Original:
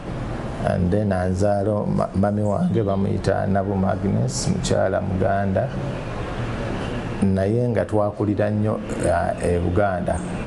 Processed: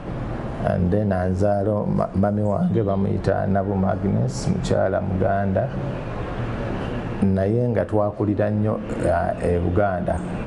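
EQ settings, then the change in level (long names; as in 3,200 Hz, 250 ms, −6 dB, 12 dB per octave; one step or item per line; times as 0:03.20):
high-shelf EQ 3,700 Hz −10.5 dB
0.0 dB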